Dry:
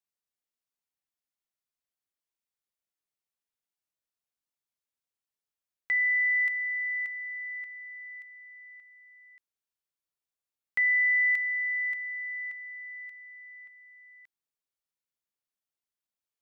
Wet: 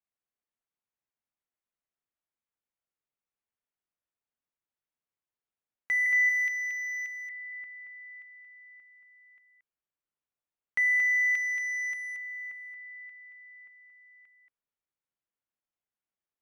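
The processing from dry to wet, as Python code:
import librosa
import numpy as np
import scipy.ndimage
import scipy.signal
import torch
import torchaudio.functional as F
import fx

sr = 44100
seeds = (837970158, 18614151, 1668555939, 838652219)

p1 = fx.wiener(x, sr, points=9)
p2 = fx.highpass(p1, sr, hz=1500.0, slope=24, at=(6.06, 7.3))
y = p2 + fx.echo_single(p2, sr, ms=228, db=-6.5, dry=0)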